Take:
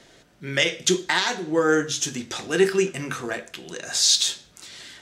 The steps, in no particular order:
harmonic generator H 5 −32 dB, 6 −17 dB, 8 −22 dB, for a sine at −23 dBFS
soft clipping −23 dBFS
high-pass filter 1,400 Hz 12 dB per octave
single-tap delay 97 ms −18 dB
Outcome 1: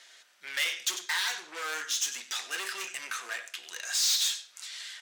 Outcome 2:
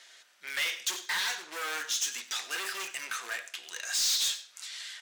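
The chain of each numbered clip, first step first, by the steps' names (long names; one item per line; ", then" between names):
single-tap delay, then soft clipping, then harmonic generator, then high-pass filter
harmonic generator, then high-pass filter, then soft clipping, then single-tap delay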